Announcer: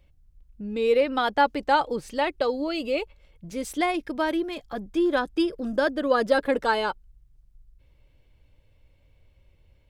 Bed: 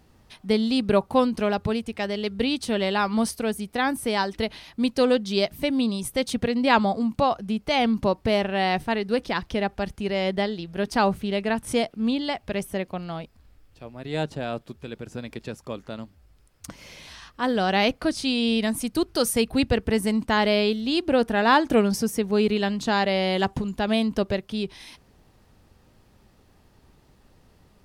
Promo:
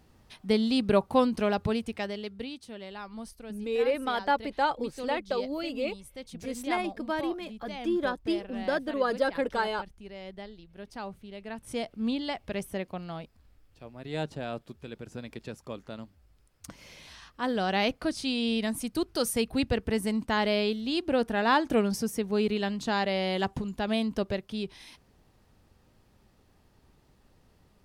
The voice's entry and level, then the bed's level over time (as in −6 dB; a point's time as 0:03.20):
2.90 s, −5.5 dB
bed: 0:01.91 −3 dB
0:02.66 −18 dB
0:11.33 −18 dB
0:12.01 −5.5 dB